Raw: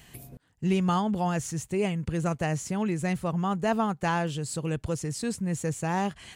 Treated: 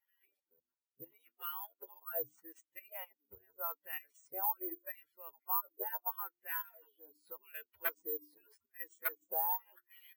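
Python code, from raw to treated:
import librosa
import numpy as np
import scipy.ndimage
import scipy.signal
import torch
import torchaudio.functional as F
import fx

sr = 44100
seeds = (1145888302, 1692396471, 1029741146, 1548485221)

y = fx.hpss_only(x, sr, part='percussive')
y = scipy.signal.sosfilt(scipy.signal.butter(2, 44.0, 'highpass', fs=sr, output='sos'), y)
y = fx.peak_eq(y, sr, hz=350.0, db=3.0, octaves=0.76)
y = fx.hum_notches(y, sr, base_hz=50, count=7)
y = y + 0.31 * np.pad(y, (int(2.1 * sr / 1000.0), 0))[:len(y)]
y = fx.level_steps(y, sr, step_db=13)
y = (np.mod(10.0 ** (25.5 / 20.0) * y + 1.0, 2.0) - 1.0) / 10.0 ** (25.5 / 20.0)
y = fx.stretch_vocoder(y, sr, factor=1.6)
y = fx.filter_lfo_bandpass(y, sr, shape='sine', hz=0.82, low_hz=650.0, high_hz=2200.0, q=1.4)
y = (np.kron(scipy.signal.resample_poly(y, 1, 3), np.eye(3)[0]) * 3)[:len(y)]
y = fx.spectral_expand(y, sr, expansion=1.5)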